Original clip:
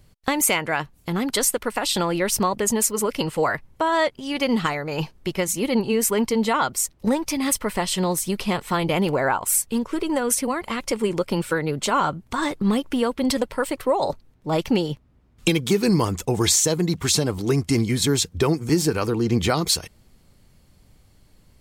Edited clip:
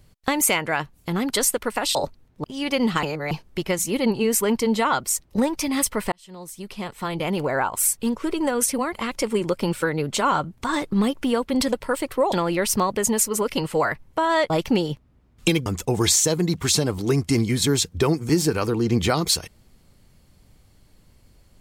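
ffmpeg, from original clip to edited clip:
-filter_complex "[0:a]asplit=9[s0][s1][s2][s3][s4][s5][s6][s7][s8];[s0]atrim=end=1.952[s9];[s1]atrim=start=14.008:end=14.502[s10];[s2]atrim=start=4.128:end=4.722[s11];[s3]atrim=start=4.718:end=5.002,asetpts=PTS-STARTPTS,areverse[s12];[s4]atrim=start=4.998:end=7.81,asetpts=PTS-STARTPTS,afade=t=out:st=2.808:d=0.004:c=hsin[s13];[s5]atrim=start=7.81:end=14.012,asetpts=PTS-STARTPTS,afade=t=in:d=1.77[s14];[s6]atrim=start=1.948:end=4.132[s15];[s7]atrim=start=14.498:end=15.662[s16];[s8]atrim=start=16.058[s17];[s9][s10]acrossfade=d=0.004:c1=hsin:c2=hsin[s18];[s18][s11]acrossfade=d=0.004:c1=hsin:c2=hsin[s19];[s19][s12]acrossfade=d=0.004:c1=hsin:c2=hsin[s20];[s13][s14]concat=n=2:v=0:a=1[s21];[s20][s21]acrossfade=d=0.004:c1=hsin:c2=hsin[s22];[s22][s15]acrossfade=d=0.004:c1=hsin:c2=hsin[s23];[s23][s16]acrossfade=d=0.004:c1=hsin:c2=hsin[s24];[s24][s17]acrossfade=d=0.004:c1=hsin:c2=hsin"

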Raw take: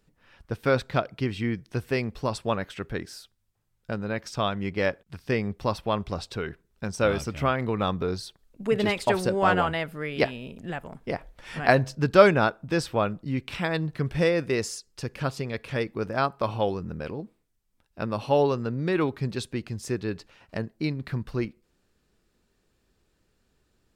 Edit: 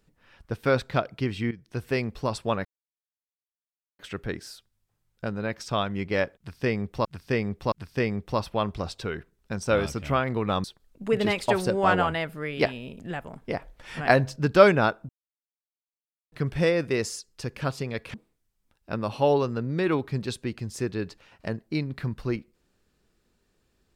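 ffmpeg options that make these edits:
-filter_complex "[0:a]asplit=9[s0][s1][s2][s3][s4][s5][s6][s7][s8];[s0]atrim=end=1.51,asetpts=PTS-STARTPTS,afade=t=out:st=1.506:d=0.004:c=hsin:silence=0.199526[s9];[s1]atrim=start=1.51:end=2.65,asetpts=PTS-STARTPTS,afade=t=in:d=0.38:silence=0.199526,afade=t=out:st=1.136:d=0.004:c=hsin,apad=pad_dur=1.34[s10];[s2]atrim=start=2.65:end=5.712,asetpts=PTS-STARTPTS,afade=t=in:d=0.004:c=hsin[s11];[s3]atrim=start=5.038:end=5.712[s12];[s4]atrim=start=5.038:end=7.962[s13];[s5]atrim=start=8.228:end=12.68,asetpts=PTS-STARTPTS,afade=t=out:st=4.448:d=0.004:c=hsin[s14];[s6]atrim=start=12.68:end=13.91,asetpts=PTS-STARTPTS,volume=0[s15];[s7]atrim=start=13.91:end=15.732,asetpts=PTS-STARTPTS,afade=t=in:d=0.004:c=hsin[s16];[s8]atrim=start=17.228[s17];[s9][s10][s11]concat=n=3:v=0:a=1[s18];[s18][s12]acrossfade=d=0.004:c1=hsin:c2=hsin[s19];[s19][s13]acrossfade=d=0.004:c1=hsin:c2=hsin[s20];[s14][s15][s16]concat=n=3:v=0:a=1[s21];[s20][s21]acrossfade=d=0.004:c1=hsin:c2=hsin[s22];[s22][s17]acrossfade=d=0.004:c1=hsin:c2=hsin"

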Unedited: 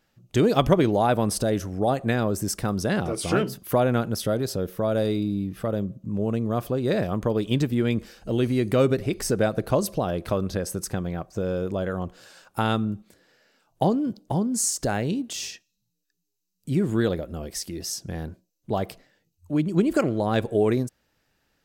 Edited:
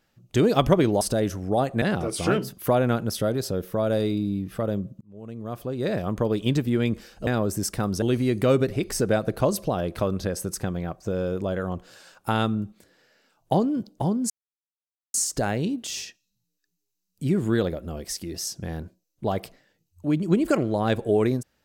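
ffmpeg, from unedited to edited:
-filter_complex "[0:a]asplit=7[s0][s1][s2][s3][s4][s5][s6];[s0]atrim=end=1.012[s7];[s1]atrim=start=1.308:end=2.122[s8];[s2]atrim=start=2.868:end=6.06,asetpts=PTS-STARTPTS,afade=t=out:st=3.188:d=0.004:c=hsin[s9];[s3]atrim=start=6.06:end=8.322,asetpts=PTS-STARTPTS,afade=t=in:d=1.18[s10];[s4]atrim=start=2.118:end=2.872[s11];[s5]atrim=start=8.318:end=14.6,asetpts=PTS-STARTPTS,afade=t=out:st=6.278:d=0.004:c=hsin,apad=pad_dur=0.84[s12];[s6]atrim=start=14.6,asetpts=PTS-STARTPTS,afade=t=in:d=0.004:c=hsin[s13];[s7][s8]acrossfade=d=0.004:c1=hsin:c2=hsin[s14];[s9][s10]concat=n=2:v=0:a=1[s15];[s14][s15]acrossfade=d=0.004:c1=hsin:c2=hsin[s16];[s16][s11]acrossfade=d=0.004:c1=hsin:c2=hsin[s17];[s12][s13]concat=n=2:v=0:a=1[s18];[s17][s18]acrossfade=d=0.004:c1=hsin:c2=hsin"

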